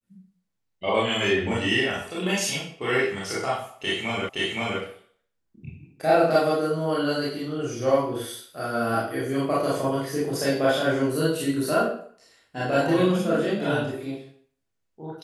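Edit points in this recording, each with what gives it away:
4.29 repeat of the last 0.52 s

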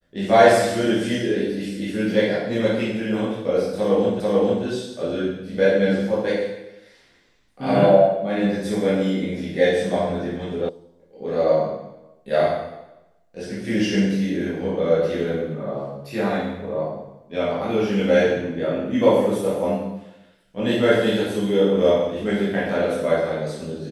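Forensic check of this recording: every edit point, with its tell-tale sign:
4.2 repeat of the last 0.44 s
10.69 sound cut off

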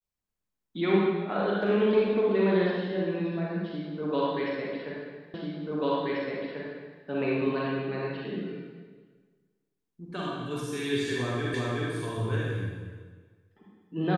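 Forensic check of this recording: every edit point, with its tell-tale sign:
5.34 repeat of the last 1.69 s
11.54 repeat of the last 0.37 s

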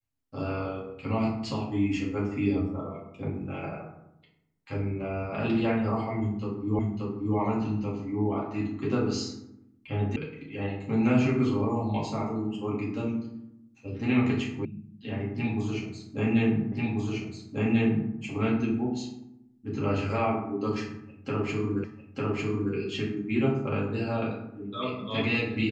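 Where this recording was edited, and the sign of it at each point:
6.79 repeat of the last 0.58 s
10.16 sound cut off
14.65 sound cut off
16.72 repeat of the last 1.39 s
21.84 repeat of the last 0.9 s

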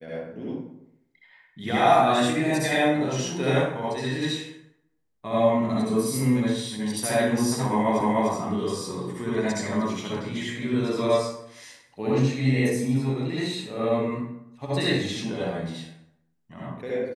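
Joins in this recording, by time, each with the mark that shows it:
8.01 repeat of the last 0.3 s

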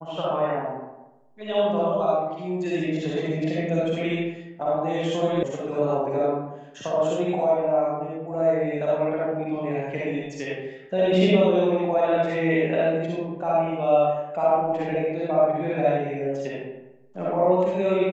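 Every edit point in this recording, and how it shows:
5.43 sound cut off

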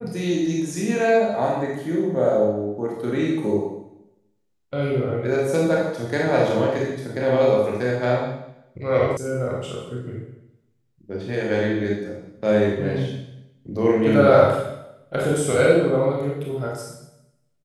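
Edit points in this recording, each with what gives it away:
9.17 sound cut off

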